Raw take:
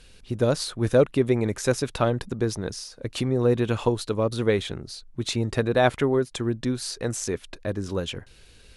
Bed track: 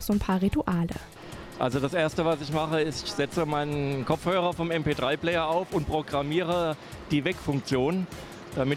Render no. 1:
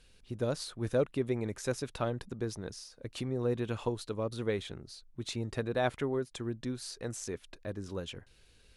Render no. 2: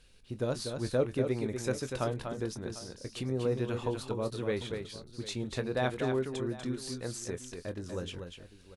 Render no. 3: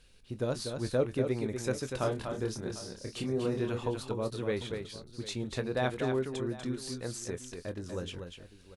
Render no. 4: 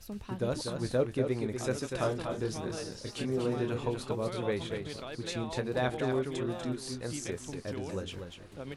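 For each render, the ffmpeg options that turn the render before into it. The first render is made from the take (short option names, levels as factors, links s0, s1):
-af "volume=0.299"
-filter_complex "[0:a]asplit=2[s0][s1];[s1]adelay=23,volume=0.266[s2];[s0][s2]amix=inputs=2:normalize=0,aecho=1:1:243|748:0.473|0.141"
-filter_complex "[0:a]asettb=1/sr,asplit=3[s0][s1][s2];[s0]atrim=end=1.984[s3];[s1]atrim=start=1.98:end=3.71,asetpts=PTS-STARTPTS,afade=t=in:d=0.004:c=qsin,afade=t=out:st=1.726:d=0.004:c=qsin,asplit=2[s4][s5];[s5]adelay=28,volume=0.631[s6];[s4][s6]amix=inputs=2:normalize=0,atrim=end_sample=76293[s7];[s2]atrim=start=3.706[s8];[s3][s7]acrossfade=d=0.004:c1=hsin:c2=qsin[s9];[s9][s8]acrossfade=d=0.004:c1=qsin:c2=hsin"
-filter_complex "[1:a]volume=0.158[s0];[0:a][s0]amix=inputs=2:normalize=0"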